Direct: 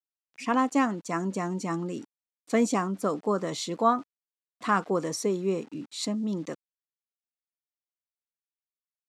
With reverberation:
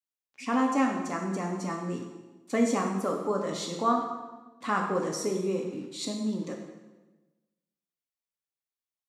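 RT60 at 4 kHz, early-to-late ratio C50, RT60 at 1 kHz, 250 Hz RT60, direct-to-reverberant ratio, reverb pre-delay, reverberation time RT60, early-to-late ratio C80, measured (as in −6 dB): 1.0 s, 4.5 dB, 1.1 s, 1.3 s, 0.5 dB, 3 ms, 1.2 s, 6.5 dB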